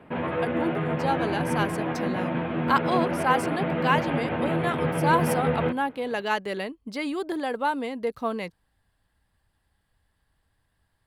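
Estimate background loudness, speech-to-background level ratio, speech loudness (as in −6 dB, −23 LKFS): −27.5 LKFS, −1.5 dB, −29.0 LKFS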